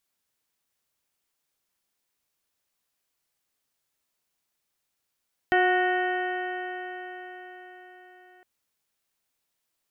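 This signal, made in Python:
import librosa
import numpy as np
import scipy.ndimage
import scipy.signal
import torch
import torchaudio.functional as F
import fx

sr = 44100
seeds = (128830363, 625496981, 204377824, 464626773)

y = fx.additive_stiff(sr, length_s=2.91, hz=363.0, level_db=-22.5, upper_db=(1.0, -16, -4.5, -1.0, -18, -17.5, -15.5), decay_s=4.95, stiffness=0.0017)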